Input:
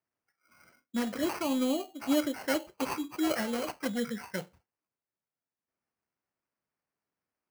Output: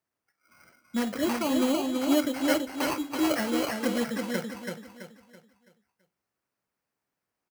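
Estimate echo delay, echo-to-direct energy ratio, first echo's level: 0.331 s, -3.5 dB, -4.0 dB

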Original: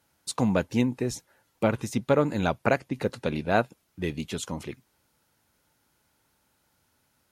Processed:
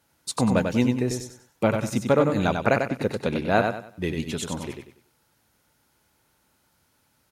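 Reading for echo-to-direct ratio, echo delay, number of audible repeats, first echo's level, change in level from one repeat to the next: -5.0 dB, 95 ms, 3, -5.5 dB, -10.0 dB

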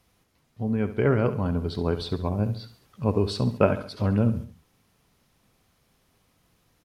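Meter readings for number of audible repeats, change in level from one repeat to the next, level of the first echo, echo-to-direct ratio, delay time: 3, -6.5 dB, -12.5 dB, -11.5 dB, 69 ms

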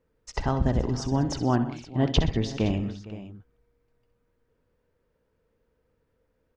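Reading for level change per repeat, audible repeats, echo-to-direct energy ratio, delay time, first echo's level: no steady repeat, 5, -8.5 dB, 64 ms, -11.5 dB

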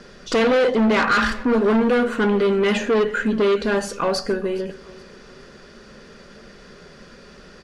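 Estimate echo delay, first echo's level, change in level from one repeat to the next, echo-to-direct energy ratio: 0.418 s, -21.0 dB, -9.0 dB, -20.5 dB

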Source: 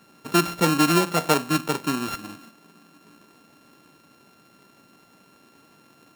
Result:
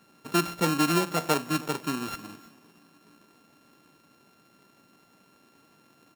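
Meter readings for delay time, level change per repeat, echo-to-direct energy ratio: 0.318 s, -8.0 dB, -21.5 dB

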